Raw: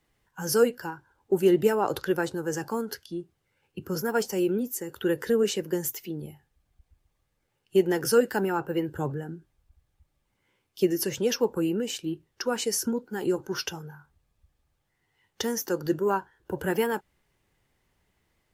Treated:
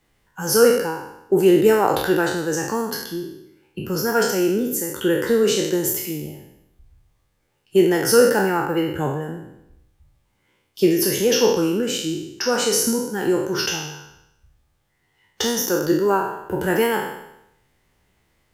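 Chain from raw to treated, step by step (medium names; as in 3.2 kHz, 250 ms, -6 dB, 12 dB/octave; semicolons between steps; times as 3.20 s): spectral sustain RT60 0.83 s; trim +5 dB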